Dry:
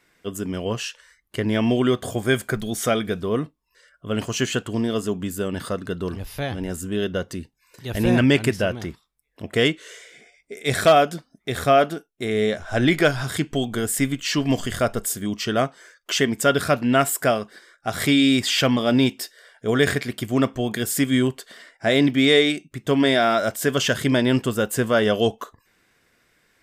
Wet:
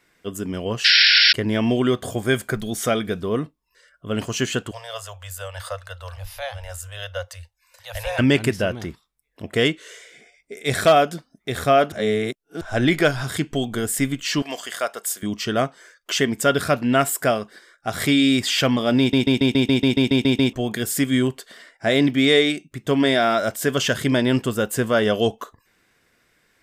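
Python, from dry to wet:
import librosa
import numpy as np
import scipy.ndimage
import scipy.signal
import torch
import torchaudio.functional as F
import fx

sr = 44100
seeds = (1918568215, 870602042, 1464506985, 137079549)

y = fx.spec_paint(x, sr, seeds[0], shape='noise', start_s=0.84, length_s=0.49, low_hz=1400.0, high_hz=5600.0, level_db=-14.0)
y = fx.cheby1_bandstop(y, sr, low_hz=100.0, high_hz=520.0, order=5, at=(4.71, 8.19))
y = fx.highpass(y, sr, hz=650.0, slope=12, at=(14.42, 15.23))
y = fx.edit(y, sr, fx.reverse_span(start_s=11.92, length_s=0.69),
    fx.stutter_over(start_s=18.99, slice_s=0.14, count=11), tone=tone)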